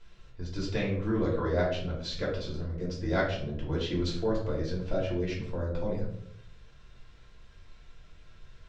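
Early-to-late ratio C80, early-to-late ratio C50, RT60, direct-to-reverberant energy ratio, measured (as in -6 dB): 8.5 dB, 4.0 dB, 0.75 s, -5.5 dB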